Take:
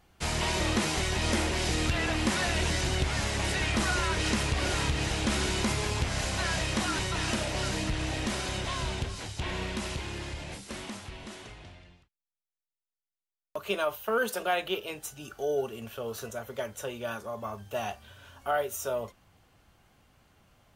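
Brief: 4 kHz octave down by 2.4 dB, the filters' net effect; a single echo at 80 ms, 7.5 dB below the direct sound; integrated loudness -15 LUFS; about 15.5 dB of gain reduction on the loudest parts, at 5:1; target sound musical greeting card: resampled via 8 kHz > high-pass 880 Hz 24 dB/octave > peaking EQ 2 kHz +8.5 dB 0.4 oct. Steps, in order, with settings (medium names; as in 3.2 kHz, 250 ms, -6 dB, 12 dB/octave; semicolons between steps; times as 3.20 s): peaking EQ 4 kHz -4 dB; compression 5:1, threshold -42 dBFS; delay 80 ms -7.5 dB; resampled via 8 kHz; high-pass 880 Hz 24 dB/octave; peaking EQ 2 kHz +8.5 dB 0.4 oct; trim +30 dB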